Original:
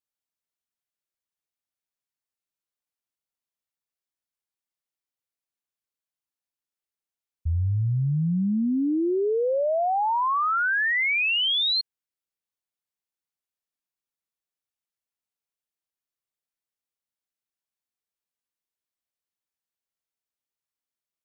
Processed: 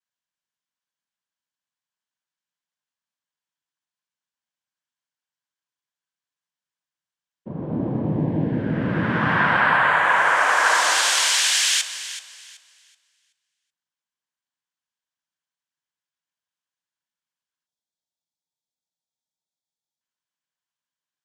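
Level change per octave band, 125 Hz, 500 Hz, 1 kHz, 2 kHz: -0.5 dB, -2.5 dB, +5.5 dB, +7.0 dB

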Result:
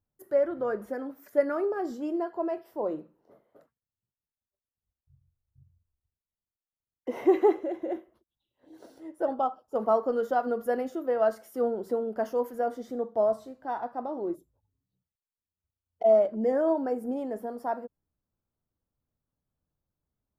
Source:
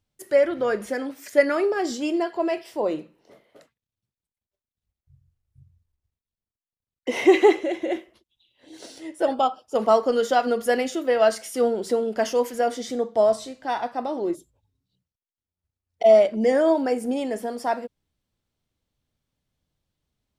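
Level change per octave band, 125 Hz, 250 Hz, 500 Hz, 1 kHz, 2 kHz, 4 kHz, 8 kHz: no reading, -6.0 dB, -6.0 dB, -6.0 dB, -13.0 dB, under -20 dB, under -15 dB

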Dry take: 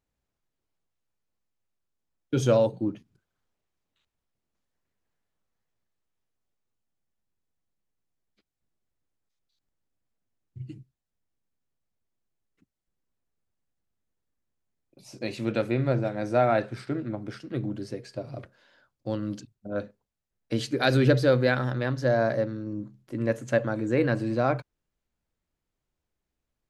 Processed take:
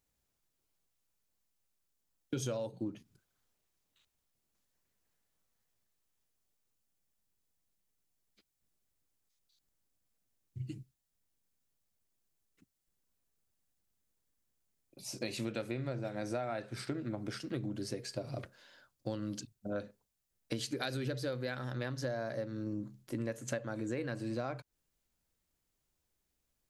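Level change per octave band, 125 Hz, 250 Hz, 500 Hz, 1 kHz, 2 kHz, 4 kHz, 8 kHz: -12.0 dB, -10.5 dB, -13.5 dB, -14.0 dB, -12.5 dB, -7.0 dB, -0.5 dB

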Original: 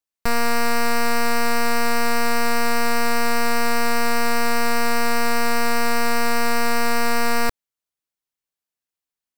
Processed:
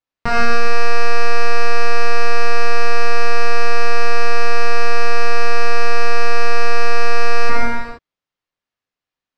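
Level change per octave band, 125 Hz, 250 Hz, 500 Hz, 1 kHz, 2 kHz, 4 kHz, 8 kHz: no reading, -8.5 dB, +3.5 dB, +1.5 dB, +3.0 dB, 0.0 dB, -6.5 dB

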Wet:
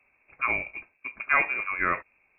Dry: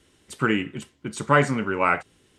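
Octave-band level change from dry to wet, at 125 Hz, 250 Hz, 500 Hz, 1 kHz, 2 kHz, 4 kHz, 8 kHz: -20.5 dB, -18.0 dB, -13.5 dB, -5.5 dB, +0.5 dB, under -20 dB, under -40 dB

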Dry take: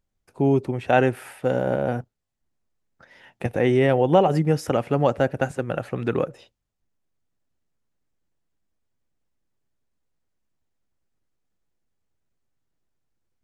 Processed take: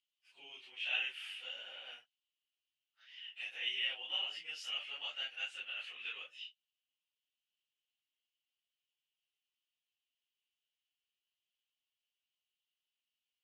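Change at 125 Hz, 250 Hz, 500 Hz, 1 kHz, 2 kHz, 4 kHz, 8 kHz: under -40 dB, under -40 dB, under -40 dB, -31.0 dB, -9.0 dB, +4.0 dB, -14.5 dB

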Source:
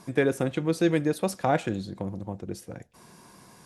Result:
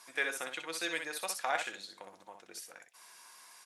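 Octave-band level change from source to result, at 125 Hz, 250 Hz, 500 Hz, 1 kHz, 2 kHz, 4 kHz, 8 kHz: -35.5 dB, -23.5 dB, -16.0 dB, -7.0 dB, 0.0 dB, +1.0 dB, +1.0 dB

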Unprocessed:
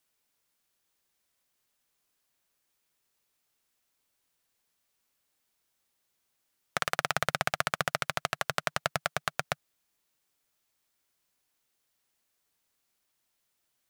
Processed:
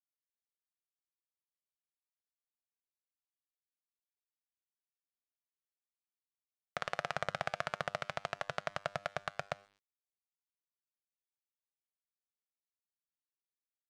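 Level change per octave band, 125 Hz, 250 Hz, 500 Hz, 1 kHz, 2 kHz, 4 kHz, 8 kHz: -8.0 dB, -8.0 dB, -4.0 dB, -7.0 dB, -8.5 dB, -10.5 dB, -16.0 dB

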